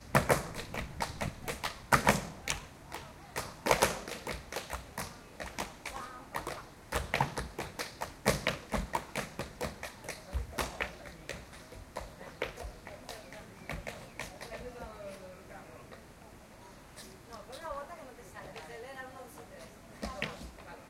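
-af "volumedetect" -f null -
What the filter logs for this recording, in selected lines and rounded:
mean_volume: -38.2 dB
max_volume: -5.9 dB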